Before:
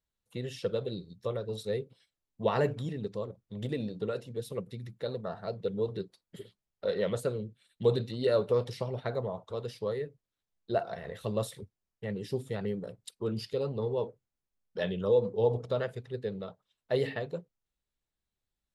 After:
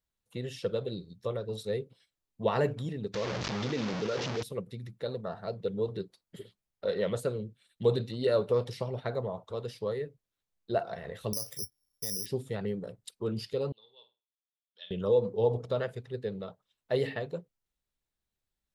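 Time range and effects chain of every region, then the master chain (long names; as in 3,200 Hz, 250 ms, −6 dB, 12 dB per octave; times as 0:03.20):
0:03.14–0:04.43: linear delta modulator 32 kbit/s, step −34.5 dBFS + high-pass filter 160 Hz 6 dB per octave + envelope flattener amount 70%
0:11.33–0:12.26: downward compressor 8 to 1, threshold −40 dBFS + bad sample-rate conversion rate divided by 8×, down filtered, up zero stuff
0:13.72–0:14.91: resonant band-pass 3,500 Hz, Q 6.4 + flutter between parallel walls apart 8.5 metres, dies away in 0.28 s
whole clip: no processing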